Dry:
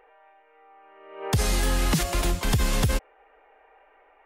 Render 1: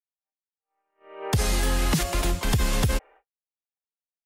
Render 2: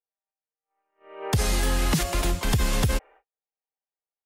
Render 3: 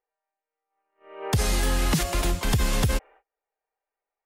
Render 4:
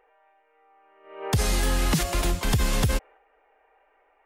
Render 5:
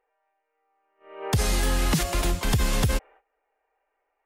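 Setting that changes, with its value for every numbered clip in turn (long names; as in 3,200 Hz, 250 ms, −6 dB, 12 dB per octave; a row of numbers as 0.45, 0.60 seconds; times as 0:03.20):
noise gate, range: −59, −46, −32, −6, −19 decibels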